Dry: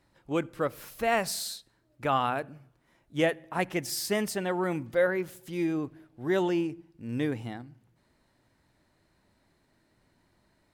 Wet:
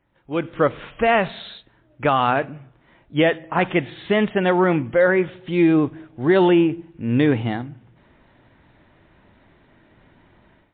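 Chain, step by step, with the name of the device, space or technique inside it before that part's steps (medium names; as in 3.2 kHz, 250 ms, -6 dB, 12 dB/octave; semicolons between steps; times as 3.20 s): low-bitrate web radio (level rider gain up to 15 dB; peak limiter -7 dBFS, peak gain reduction 5 dB; MP3 24 kbps 8 kHz)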